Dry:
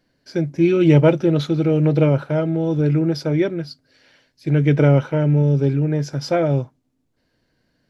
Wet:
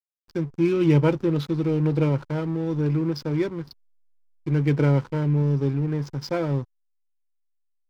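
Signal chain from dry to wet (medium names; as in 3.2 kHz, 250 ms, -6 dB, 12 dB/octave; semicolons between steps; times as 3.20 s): hysteresis with a dead band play -27.5 dBFS; graphic EQ with 31 bands 630 Hz -9 dB, 1 kHz +5 dB, 5 kHz +4 dB; trim -5 dB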